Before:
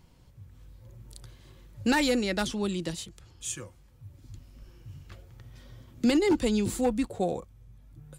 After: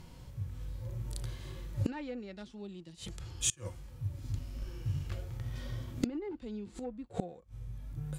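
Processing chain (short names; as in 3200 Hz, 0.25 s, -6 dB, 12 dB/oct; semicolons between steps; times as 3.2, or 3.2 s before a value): in parallel at -6.5 dB: crossover distortion -43 dBFS; on the sum: harmonic-percussive split percussive -11 dB; treble ducked by the level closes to 1900 Hz, closed at -17.5 dBFS; flipped gate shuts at -28 dBFS, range -28 dB; gain +10.5 dB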